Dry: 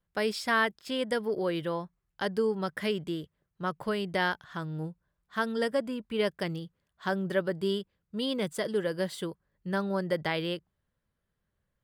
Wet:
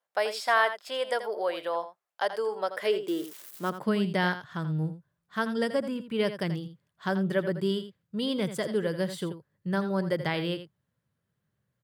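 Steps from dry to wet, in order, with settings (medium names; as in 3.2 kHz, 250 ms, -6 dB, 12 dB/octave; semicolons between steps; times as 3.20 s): 3.08–3.70 s: zero-crossing glitches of -34 dBFS; delay 83 ms -11.5 dB; high-pass sweep 660 Hz -> 120 Hz, 2.52–4.50 s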